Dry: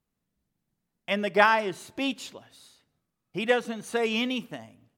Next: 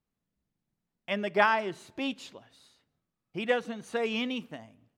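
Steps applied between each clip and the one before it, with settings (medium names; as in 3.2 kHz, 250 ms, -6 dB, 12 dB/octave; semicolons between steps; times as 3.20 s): treble shelf 8.2 kHz -11 dB; trim -3.5 dB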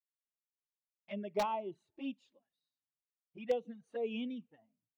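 touch-sensitive flanger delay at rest 7.9 ms, full sweep at -27 dBFS; integer overflow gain 17.5 dB; spectral contrast expander 1.5:1; trim -4 dB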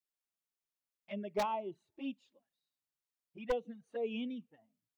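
one-sided wavefolder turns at -27.5 dBFS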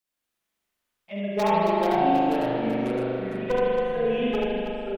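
loudspeakers at several distances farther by 24 m -3 dB, 93 m -8 dB; ever faster or slower copies 171 ms, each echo -3 st, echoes 3; spring tank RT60 3.1 s, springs 40 ms, chirp 40 ms, DRR -5.5 dB; trim +5.5 dB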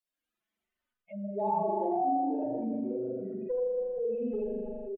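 spectral contrast enhancement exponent 2.6; delay 462 ms -21 dB; trim -7 dB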